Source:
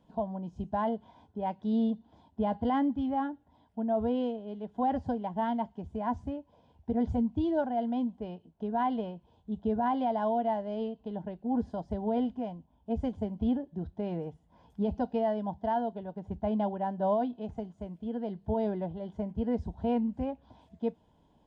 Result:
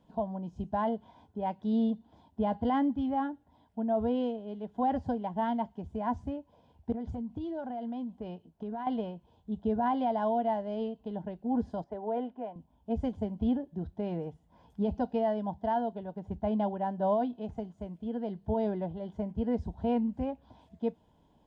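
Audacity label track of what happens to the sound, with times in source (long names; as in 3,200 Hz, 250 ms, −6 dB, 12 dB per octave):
6.920000	8.870000	downward compressor 12 to 1, threshold −33 dBFS
11.840000	12.560000	three-way crossover with the lows and the highs turned down lows −20 dB, under 290 Hz, highs −18 dB, over 2,600 Hz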